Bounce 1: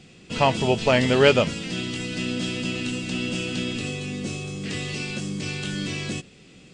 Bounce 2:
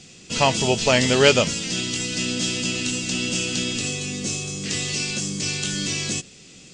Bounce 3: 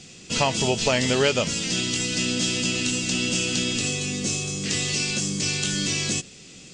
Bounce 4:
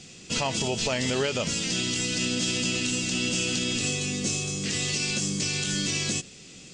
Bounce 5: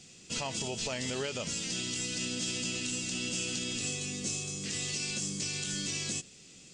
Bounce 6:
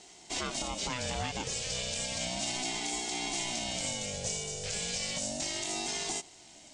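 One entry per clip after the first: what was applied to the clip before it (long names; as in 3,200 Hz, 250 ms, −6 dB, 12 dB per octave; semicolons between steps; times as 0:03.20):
parametric band 6,500 Hz +14.5 dB 1.3 octaves
downward compressor 3 to 1, threshold −20 dBFS, peak gain reduction 8.5 dB; level +1 dB
brickwall limiter −15.5 dBFS, peak gain reduction 7.5 dB; level −1.5 dB
high-shelf EQ 8,300 Hz +9.5 dB; level −9 dB
ring modulator whose carrier an LFO sweeps 420 Hz, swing 30%, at 0.33 Hz; level +3 dB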